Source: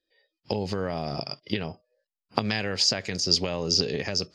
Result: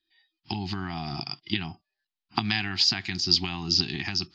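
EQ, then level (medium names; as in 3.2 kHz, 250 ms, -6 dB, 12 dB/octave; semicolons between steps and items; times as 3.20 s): Chebyshev band-stop 360–740 Hz, order 3; resonant low-pass 3.9 kHz, resonance Q 1.9; 0.0 dB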